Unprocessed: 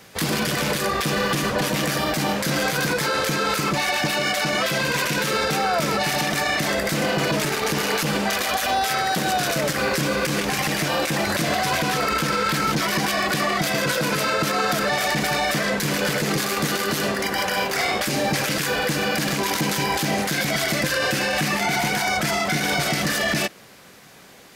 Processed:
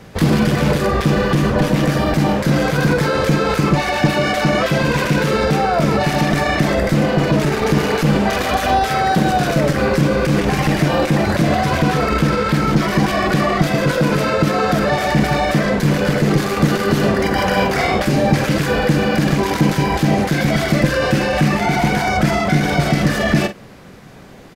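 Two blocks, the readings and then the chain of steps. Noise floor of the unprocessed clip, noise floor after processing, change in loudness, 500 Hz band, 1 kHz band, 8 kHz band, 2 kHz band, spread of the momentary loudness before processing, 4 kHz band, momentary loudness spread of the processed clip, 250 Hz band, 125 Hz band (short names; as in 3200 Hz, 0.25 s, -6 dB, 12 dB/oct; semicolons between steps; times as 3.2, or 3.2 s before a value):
-35 dBFS, -25 dBFS, +5.5 dB, +7.5 dB, +5.0 dB, -4.0 dB, +1.5 dB, 1 LU, -1.0 dB, 1 LU, +10.0 dB, +12.5 dB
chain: tilt -3 dB/oct; vocal rider; doubler 47 ms -11 dB; gain +4 dB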